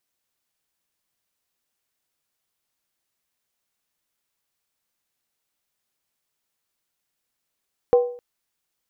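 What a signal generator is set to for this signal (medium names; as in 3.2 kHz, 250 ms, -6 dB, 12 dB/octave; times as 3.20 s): skin hit length 0.26 s, lowest mode 487 Hz, decay 0.50 s, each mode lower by 12 dB, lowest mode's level -9.5 dB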